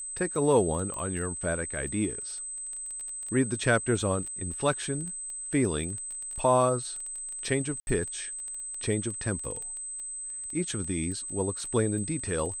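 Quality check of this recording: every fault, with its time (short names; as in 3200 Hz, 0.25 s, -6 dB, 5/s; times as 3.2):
crackle 11/s -34 dBFS
tone 8200 Hz -35 dBFS
0.94 pop -25 dBFS
7.8–7.87 gap 71 ms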